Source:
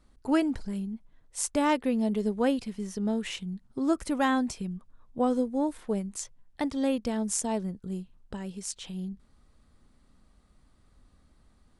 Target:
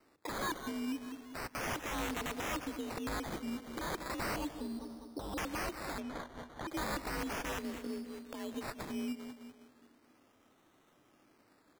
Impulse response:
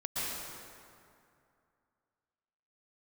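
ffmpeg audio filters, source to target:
-filter_complex "[0:a]agate=range=-7dB:threshold=-49dB:ratio=16:detection=peak,highpass=250,afreqshift=51,aeval=exprs='(mod(22.4*val(0)+1,2)-1)/22.4':c=same,aecho=1:1:201|402|603|804:0.141|0.0593|0.0249|0.0105,acompressor=threshold=-43dB:ratio=6,asettb=1/sr,asplit=3[a][b][c];[a]atrim=end=4.364[d];[b]atrim=start=4.36:end=5.38,asetpts=PTS-STARTPTS,afade=t=in:d=0.004:c=qsin,afade=t=out:st=1.016:d=0.004:c=qsin,lowpass=f=1k:w=0.5412,lowpass=f=1k:w=1.3066[e];[c]atrim=start=5.376[f];[d][e]acrossfade=d=0.004:c1=hsin:c2=qsin[g];[g][f]acrossfade=d=0.004:c1=qsin:c2=hsin,alimiter=level_in=17dB:limit=-24dB:level=0:latency=1:release=284,volume=-17dB,asplit=2[h][i];[1:a]atrim=start_sample=2205,asetrate=48510,aresample=44100,highshelf=f=5k:g=-6.5[j];[i][j]afir=irnorm=-1:irlink=0,volume=-18.5dB[k];[h][k]amix=inputs=2:normalize=0,acrusher=samples=13:mix=1:aa=0.000001:lfo=1:lforange=7.8:lforate=0.35,asettb=1/sr,asplit=3[l][m][n];[l]atrim=end=6.004[o];[m]atrim=start=6:end=6.68,asetpts=PTS-STARTPTS,afade=t=in:d=0.004:c=qsin,afade=t=out:st=0.676:d=0.004:c=qsin,aemphasis=mode=reproduction:type=50kf[p];[n]atrim=start=6.676[q];[o][p]acrossfade=d=0.004:c1=hsin:c2=qsin[r];[r][q]acrossfade=d=0.004:c1=qsin:c2=hsin,volume=9.5dB"

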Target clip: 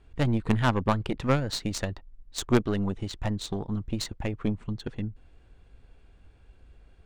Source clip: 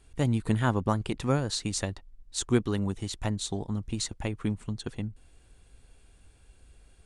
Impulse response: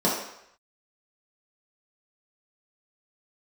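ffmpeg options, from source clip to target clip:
-af "adynamicsmooth=sensitivity=3.5:basefreq=3.3k,aeval=exprs='0.299*(cos(1*acos(clip(val(0)/0.299,-1,1)))-cos(1*PI/2))+0.0211*(cos(3*acos(clip(val(0)/0.299,-1,1)))-cos(3*PI/2))+0.0376*(cos(4*acos(clip(val(0)/0.299,-1,1)))-cos(4*PI/2))+0.015*(cos(5*acos(clip(val(0)/0.299,-1,1)))-cos(5*PI/2))+0.0531*(cos(6*acos(clip(val(0)/0.299,-1,1)))-cos(6*PI/2))':c=same,volume=2dB"

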